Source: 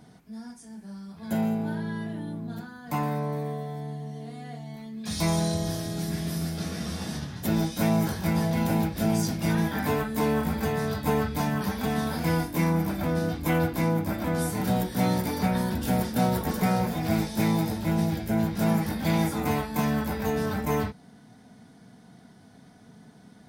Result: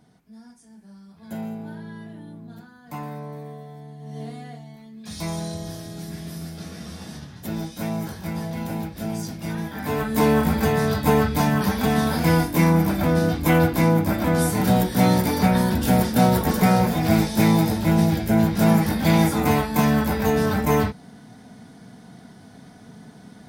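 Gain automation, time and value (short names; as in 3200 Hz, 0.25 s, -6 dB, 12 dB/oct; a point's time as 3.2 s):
3.97 s -5.5 dB
4.21 s +6 dB
4.77 s -4 dB
9.75 s -4 dB
10.15 s +7 dB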